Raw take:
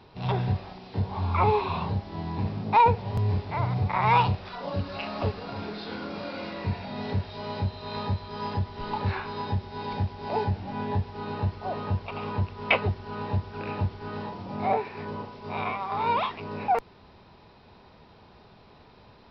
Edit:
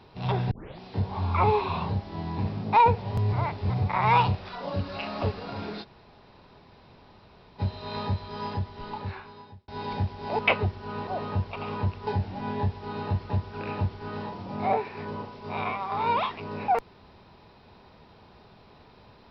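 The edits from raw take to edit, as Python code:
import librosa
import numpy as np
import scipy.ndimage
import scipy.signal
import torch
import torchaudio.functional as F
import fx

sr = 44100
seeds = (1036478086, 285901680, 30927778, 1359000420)

y = fx.edit(x, sr, fx.tape_start(start_s=0.51, length_s=0.28),
    fx.reverse_span(start_s=3.33, length_s=0.37),
    fx.room_tone_fill(start_s=5.83, length_s=1.77, crossfade_s=0.04),
    fx.fade_out_span(start_s=8.3, length_s=1.38),
    fx.swap(start_s=10.39, length_s=1.23, other_s=12.62, other_length_s=0.68), tone=tone)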